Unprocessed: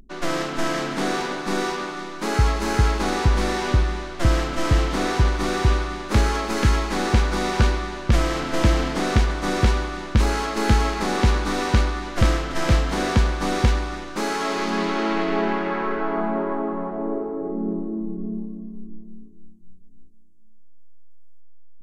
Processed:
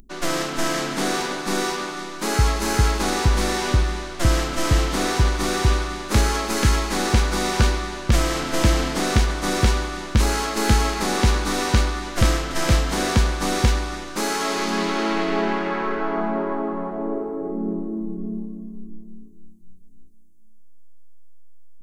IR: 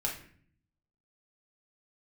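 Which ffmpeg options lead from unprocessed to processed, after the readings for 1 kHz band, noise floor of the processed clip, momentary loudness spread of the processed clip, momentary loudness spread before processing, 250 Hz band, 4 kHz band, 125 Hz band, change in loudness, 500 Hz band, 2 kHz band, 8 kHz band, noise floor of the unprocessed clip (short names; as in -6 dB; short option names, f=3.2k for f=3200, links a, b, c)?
+0.5 dB, -38 dBFS, 7 LU, 7 LU, 0.0 dB, +3.5 dB, 0.0 dB, +0.5 dB, 0.0 dB, +1.0 dB, +7.0 dB, -38 dBFS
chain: -af "highshelf=f=5.7k:g=11.5"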